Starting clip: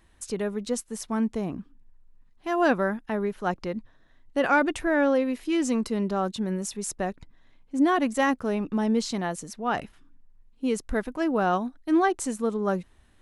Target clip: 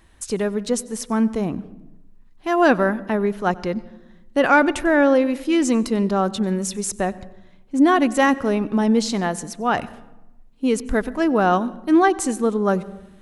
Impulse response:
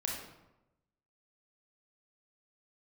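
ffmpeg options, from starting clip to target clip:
-filter_complex "[0:a]asplit=2[a][b];[1:a]atrim=start_sample=2205,lowshelf=f=390:g=7.5,adelay=94[c];[b][c]afir=irnorm=-1:irlink=0,volume=-23dB[d];[a][d]amix=inputs=2:normalize=0,volume=6.5dB"

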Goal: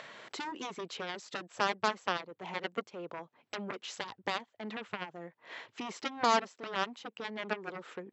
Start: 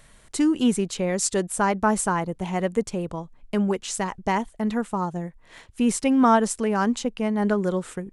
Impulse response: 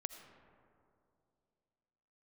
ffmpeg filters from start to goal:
-filter_complex "[0:a]acrossover=split=310 4700:gain=0.126 1 0.0891[a][b][c];[a][b][c]amix=inputs=3:normalize=0,deesser=0.9,aeval=exprs='0.376*(cos(1*acos(clip(val(0)/0.376,-1,1)))-cos(1*PI/2))+0.0841*(cos(7*acos(clip(val(0)/0.376,-1,1)))-cos(7*PI/2))':c=same,acompressor=mode=upward:threshold=-25dB:ratio=2.5,afftfilt=real='re*between(b*sr/4096,100,7800)':imag='im*between(b*sr/4096,100,7800)':win_size=4096:overlap=0.75,volume=-7dB"

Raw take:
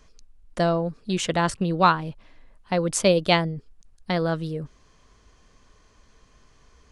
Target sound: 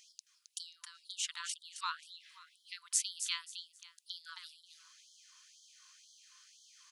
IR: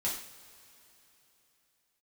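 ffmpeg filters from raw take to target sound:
-filter_complex "[0:a]equalizer=f=250:t=o:w=1:g=8,equalizer=f=1k:t=o:w=1:g=-11,equalizer=f=2k:t=o:w=1:g=-8,acompressor=threshold=-34dB:ratio=4,asplit=2[a][b];[b]aecho=0:1:267|534|801:0.398|0.0995|0.0249[c];[a][c]amix=inputs=2:normalize=0,afftfilt=real='re*gte(b*sr/1024,900*pow(3100/900,0.5+0.5*sin(2*PI*2*pts/sr)))':imag='im*gte(b*sr/1024,900*pow(3100/900,0.5+0.5*sin(2*PI*2*pts/sr)))':win_size=1024:overlap=0.75,volume=6.5dB"

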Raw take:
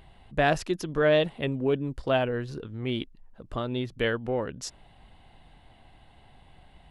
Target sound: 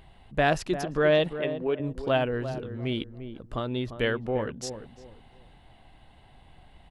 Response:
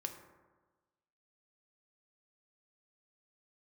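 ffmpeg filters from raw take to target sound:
-filter_complex "[0:a]asettb=1/sr,asplit=3[a][b][c];[a]atrim=end=1.334[d];[b]atrim=start=1.33:end=1.8,asetpts=PTS-STARTPTS,afade=t=in:d=0.004:c=qsin,afade=t=out:st=0.466:d=0.004:c=qsin,bass=f=250:g=-13,treble=f=4k:g=-10[e];[c]atrim=start=1.796[f];[d][e]acrossfade=d=0.004:c1=hsin:c2=qsin[g];[g][f]acrossfade=d=0.004:c1=qsin:c2=hsin,asplit=2[h][i];[i]adelay=347,lowpass=f=1k:p=1,volume=-9.5dB,asplit=2[j][k];[k]adelay=347,lowpass=f=1k:p=1,volume=0.29,asplit=2[l][m];[m]adelay=347,lowpass=f=1k:p=1,volume=0.29[n];[h][j][l][n]amix=inputs=4:normalize=0"

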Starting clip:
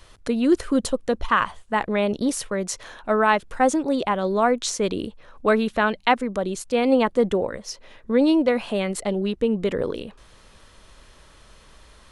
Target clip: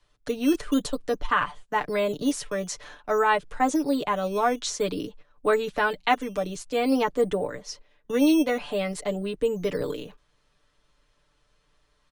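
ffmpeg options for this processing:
-filter_complex "[0:a]lowpass=8.7k,agate=range=-14dB:threshold=-41dB:ratio=16:detection=peak,aecho=1:1:6.8:0.75,acrossover=split=160|390|2300[a][b][c][d];[b]acrusher=samples=10:mix=1:aa=0.000001:lfo=1:lforange=10:lforate=0.51[e];[a][e][c][d]amix=inputs=4:normalize=0,volume=-5dB"

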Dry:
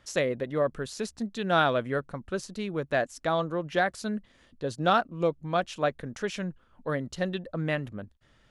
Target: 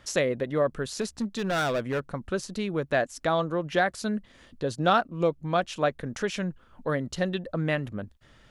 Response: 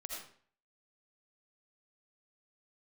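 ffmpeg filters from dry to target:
-filter_complex "[0:a]asplit=2[a][b];[b]acompressor=threshold=-38dB:ratio=6,volume=0.5dB[c];[a][c]amix=inputs=2:normalize=0,asettb=1/sr,asplit=3[d][e][f];[d]atrim=end=1.014[g];[e]atrim=start=1.01:end=2.14,asetpts=PTS-STARTPTS,afade=t=in:d=0.004:c=qsin,afade=t=out:st=1.126:d=0.004:c=qsin,asoftclip=type=hard:threshold=-23.5dB[h];[f]atrim=start=2.136[i];[g][h]acrossfade=d=0.004:c1=hsin:c2=qsin[j];[j][i]acrossfade=d=0.004:c1=qsin:c2=hsin"

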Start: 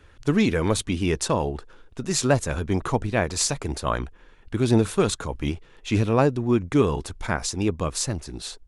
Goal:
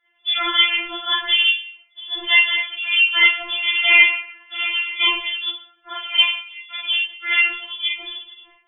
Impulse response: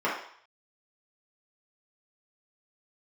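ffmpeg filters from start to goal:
-filter_complex "[0:a]afwtdn=0.02,asplit=3[a][b][c];[a]afade=t=out:st=3.61:d=0.02[d];[b]asplit=2[e][f];[f]highpass=f=720:p=1,volume=30dB,asoftclip=type=tanh:threshold=-10dB[g];[e][g]amix=inputs=2:normalize=0,lowpass=f=1.2k:p=1,volume=-6dB,afade=t=in:st=3.61:d=0.02,afade=t=out:st=4.64:d=0.02[h];[c]afade=t=in:st=4.64:d=0.02[i];[d][h][i]amix=inputs=3:normalize=0,asettb=1/sr,asplit=3[j][k][l];[j]atrim=end=6.204[m];[k]atrim=start=6.2:end=6.88,asetpts=PTS-STARTPTS,afade=t=in:d=0.004:c=qsin,afade=t=out:st=0.676:d=0.004:c=qsin,acompressor=threshold=-28dB:ratio=12[n];[l]atrim=start=6.876[o];[m][n]acrossfade=d=0.004:c1=hsin:c2=qsin[p];[p][o]acrossfade=d=0.004:c1=qsin:c2=hsin,asettb=1/sr,asplit=3[q][r][s];[q]atrim=end=7.554[t];[r]atrim=start=7.55:end=8.24,asetpts=PTS-STARTPTS,afade=t=in:d=0.004:c=qsin,afade=t=out:st=0.686:d=0.004:c=qsin,equalizer=f=810:w=0.8:g=-7[u];[s]atrim=start=8.236[v];[t][u]acrossfade=d=0.004:c1=hsin:c2=qsin[w];[w][v]acrossfade=d=0.004:c1=qsin:c2=hsin,crystalizer=i=7:c=0[x];[1:a]atrim=start_sample=2205[y];[x][y]afir=irnorm=-1:irlink=0,lowpass=f=3.1k:t=q:w=0.5098,lowpass=f=3.1k:t=q:w=0.6013,lowpass=f=3.1k:t=q:w=0.9,lowpass=f=3.1k:t=q:w=2.563,afreqshift=-3600,afftfilt=real='re*4*eq(mod(b,16),0)':imag='im*4*eq(mod(b,16),0)':win_size=2048:overlap=0.75,volume=-5dB"

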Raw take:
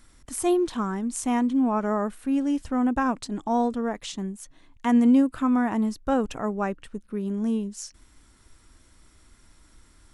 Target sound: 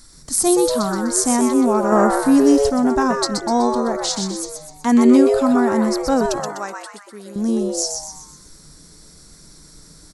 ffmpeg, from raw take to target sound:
-filter_complex "[0:a]asettb=1/sr,asplit=3[a][b][c];[a]atrim=end=4.914[d];[b]atrim=start=4.91:end=5.32,asetpts=PTS-STARTPTS,afade=t=in:d=0.004:c=qsin,afade=t=out:st=0.406:d=0.004:c=qsin,equalizer=f=2.2k:w=1.3:g=7.5[e];[c]atrim=start=5.316[f];[d][e]acrossfade=d=0.004:c1=hsin:c2=qsin[g];[g][f]acrossfade=d=0.004:c1=qsin:c2=hsin,asettb=1/sr,asplit=3[h][i][j];[h]atrim=end=6.404[k];[i]atrim=start=6.4:end=7.36,asetpts=PTS-STARTPTS,afade=t=in:d=0.004:c=qsin,afade=t=out:st=0.956:d=0.004:c=qsin,highpass=f=1.3k:p=1[l];[j]atrim=start=7.356[m];[k][l]acrossfade=d=0.004:c1=hsin:c2=qsin[n];[n][m]acrossfade=d=0.004:c1=qsin:c2=hsin,highshelf=f=3.6k:t=q:w=3:g=7,asplit=7[o][p][q][r][s][t][u];[p]adelay=125,afreqshift=140,volume=-5dB[v];[q]adelay=250,afreqshift=280,volume=-11.6dB[w];[r]adelay=375,afreqshift=420,volume=-18.1dB[x];[s]adelay=500,afreqshift=560,volume=-24.7dB[y];[t]adelay=625,afreqshift=700,volume=-31.2dB[z];[u]adelay=750,afreqshift=840,volume=-37.8dB[aa];[o][v][w][x][y][z][aa]amix=inputs=7:normalize=0,asettb=1/sr,asplit=3[ab][ac][ad];[ab]atrim=end=1.924[ae];[ac]atrim=start=1.92:end=2.7,asetpts=PTS-STARTPTS,afade=t=in:d=0.004:c=qsin,afade=t=out:st=0.776:d=0.004:c=qsin,acontrast=36[af];[ad]atrim=start=2.696[ag];[ae][af]acrossfade=d=0.004:c1=hsin:c2=qsin[ah];[ah][ag]acrossfade=d=0.004:c1=qsin:c2=hsin,volume=5.5dB"

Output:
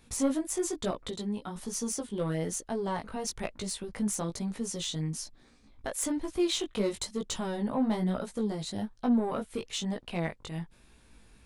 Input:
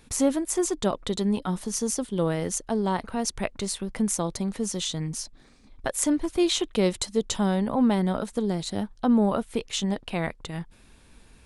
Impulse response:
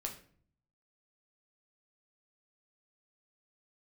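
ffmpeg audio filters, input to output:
-filter_complex "[0:a]asettb=1/sr,asplit=3[a][b][c];[a]atrim=end=1.014[d];[b]atrim=start=1.01:end=1.56,asetpts=PTS-STARTPTS,afade=t=in:d=0.004:c=qsin,afade=t=out:st=0.546:d=0.004:c=qsin,acompressor=threshold=-29dB:ratio=3[e];[c]atrim=start=1.556[f];[d][e]acrossfade=d=0.004:c1=hsin:c2=qsin[g];[g][f]acrossfade=d=0.004:c1=qsin:c2=hsin,asoftclip=type=tanh:threshold=-16.5dB,flanger=delay=16.5:depth=3:speed=1.1,volume=-1.5dB"

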